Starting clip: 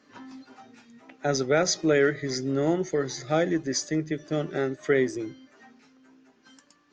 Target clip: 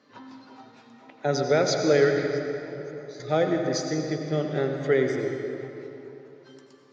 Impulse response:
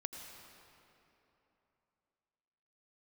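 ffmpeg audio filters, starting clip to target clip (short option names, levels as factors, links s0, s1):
-filter_complex "[0:a]equalizer=f=125:t=o:w=1:g=12,equalizer=f=250:t=o:w=1:g=4,equalizer=f=500:t=o:w=1:g=10,equalizer=f=1000:t=o:w=1:g=9,equalizer=f=2000:t=o:w=1:g=4,equalizer=f=4000:t=o:w=1:g=11,asettb=1/sr,asplit=3[s0][s1][s2];[s0]atrim=end=2.264[s3];[s1]atrim=start=2.26:end=3.2,asetpts=PTS-STARTPTS,afade=t=in:d=0.004:c=qsin,afade=t=out:st=0.936:d=0.004:c=qsin,acompressor=threshold=0.0282:ratio=12[s4];[s2]atrim=start=3.196[s5];[s3][s4]acrossfade=d=0.004:c1=hsin:c2=qsin[s6];[s6][s5]acrossfade=d=0.004:c1=qsin:c2=hsin[s7];[1:a]atrim=start_sample=2205[s8];[s7][s8]afir=irnorm=-1:irlink=0,volume=0.422"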